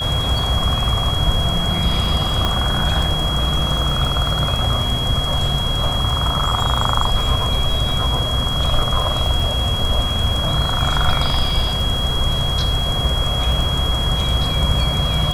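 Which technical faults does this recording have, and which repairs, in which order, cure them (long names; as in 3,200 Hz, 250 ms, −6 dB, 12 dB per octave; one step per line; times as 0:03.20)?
surface crackle 42 per second −24 dBFS
whistle 3,300 Hz −22 dBFS
0:02.45: click −6 dBFS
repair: click removal
notch filter 3,300 Hz, Q 30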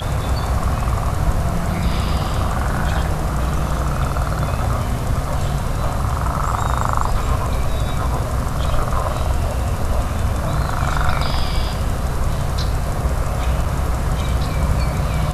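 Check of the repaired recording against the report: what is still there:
0:02.45: click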